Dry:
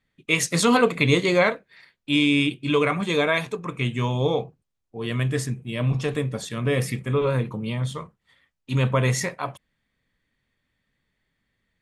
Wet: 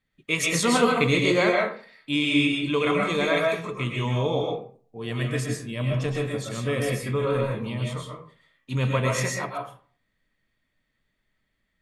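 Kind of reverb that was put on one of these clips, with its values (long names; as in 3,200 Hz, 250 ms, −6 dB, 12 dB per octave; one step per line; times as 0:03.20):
comb and all-pass reverb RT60 0.46 s, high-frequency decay 0.6×, pre-delay 85 ms, DRR −1 dB
level −4 dB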